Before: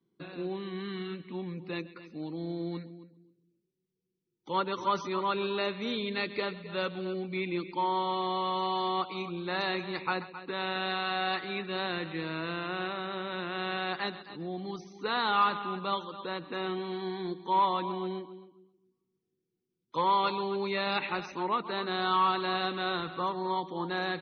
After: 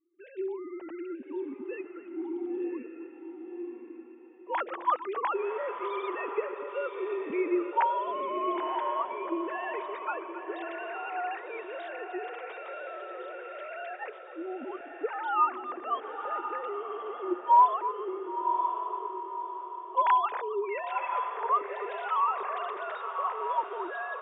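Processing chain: sine-wave speech; air absorption 380 m; diffused feedback echo 1.047 s, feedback 40%, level -6.5 dB; dynamic EQ 270 Hz, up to +4 dB, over -54 dBFS, Q 2.1; gain +1.5 dB

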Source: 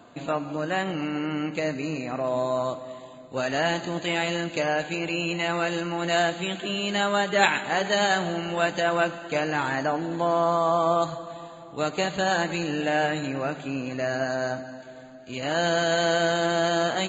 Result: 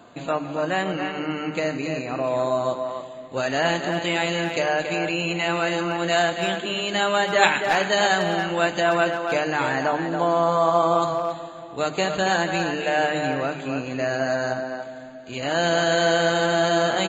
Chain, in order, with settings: notches 50/100/150/200/250/300 Hz; speakerphone echo 0.28 s, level -6 dB; gain +2.5 dB

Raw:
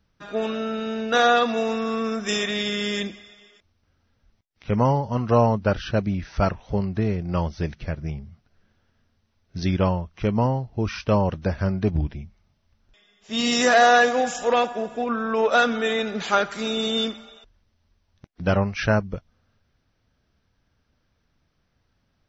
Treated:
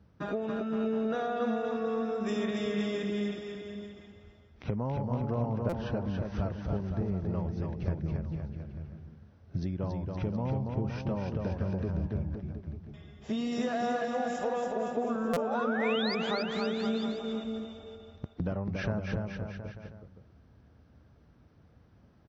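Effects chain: HPF 54 Hz 24 dB/oct; tilt shelf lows +8.5 dB, about 1400 Hz; in parallel at +3 dB: limiter -14.5 dBFS, peak gain reduction 14 dB; on the sum: compressor 8:1, threshold -25 dBFS, peak gain reduction 20 dB; painted sound rise, 15.31–16.15, 450–5100 Hz -31 dBFS; bouncing-ball echo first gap 0.28 s, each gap 0.85×, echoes 5; stuck buffer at 5.69/15.33, samples 256, times 5; gain -6 dB

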